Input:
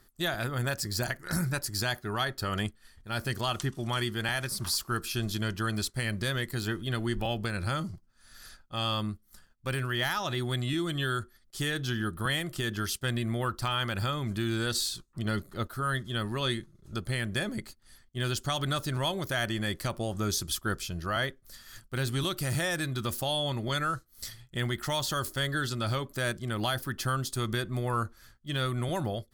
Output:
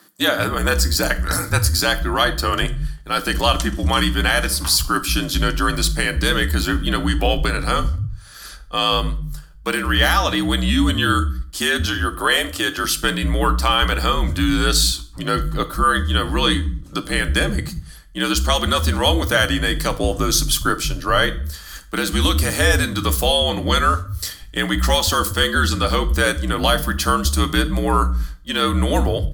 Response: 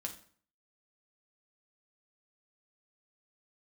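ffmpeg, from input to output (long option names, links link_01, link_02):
-filter_complex "[0:a]asettb=1/sr,asplit=3[link_01][link_02][link_03];[link_01]atrim=end=11.864[link_04];[link_02]atrim=start=11.86:end=12.84,asetpts=PTS-STARTPTS,afade=type=in:duration=0.004:curve=qsin,afade=type=out:start_time=0.976:duration=0.004:curve=qsin,lowshelf=frequency=320:width_type=q:width=1.5:gain=-11.5[link_05];[link_03]atrim=start=12.836[link_06];[link_04][link_05]acrossfade=duration=0.004:curve1=hsin:curve2=qsin[link_07];[link_07][link_06]acrossfade=duration=0.004:curve1=qsin:curve2=hsin,afreqshift=-60,acrossover=split=150[link_08][link_09];[link_08]adelay=190[link_10];[link_10][link_09]amix=inputs=2:normalize=0,asplit=2[link_11][link_12];[1:a]atrim=start_sample=2205[link_13];[link_12][link_13]afir=irnorm=-1:irlink=0,volume=2dB[link_14];[link_11][link_14]amix=inputs=2:normalize=0,volume=7.5dB"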